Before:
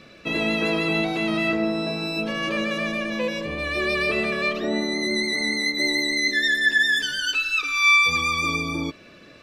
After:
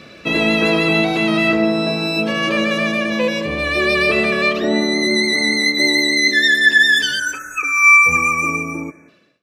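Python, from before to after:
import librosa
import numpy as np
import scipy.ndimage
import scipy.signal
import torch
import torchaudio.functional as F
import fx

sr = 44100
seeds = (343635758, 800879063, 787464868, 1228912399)

y = fx.fade_out_tail(x, sr, length_s=1.22)
y = fx.spec_erase(y, sr, start_s=7.19, length_s=1.89, low_hz=2600.0, high_hz=5700.0)
y = fx.highpass(y, sr, hz=fx.steps((0.0, 56.0), (8.17, 120.0)), slope=12)
y = y + 10.0 ** (-21.5 / 20.0) * np.pad(y, (int(187 * sr / 1000.0), 0))[:len(y)]
y = y * librosa.db_to_amplitude(7.5)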